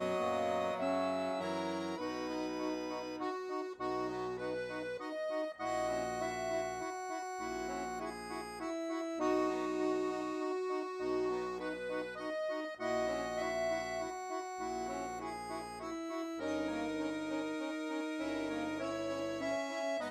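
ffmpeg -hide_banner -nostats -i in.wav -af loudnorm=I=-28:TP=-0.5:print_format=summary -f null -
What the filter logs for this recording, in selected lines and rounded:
Input Integrated:    -38.1 LUFS
Input True Peak:     -21.6 dBTP
Input LRA:             2.8 LU
Input Threshold:     -48.1 LUFS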